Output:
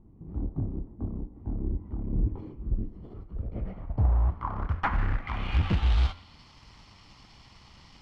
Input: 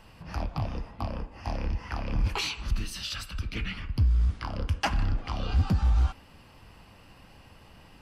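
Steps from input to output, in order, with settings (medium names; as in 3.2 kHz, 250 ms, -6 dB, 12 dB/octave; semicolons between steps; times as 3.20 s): comb filter that takes the minimum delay 0.92 ms; de-hum 86.8 Hz, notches 31; short-mantissa float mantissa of 2-bit; low-pass sweep 330 Hz -> 5.2 kHz, 2.91–6.48 s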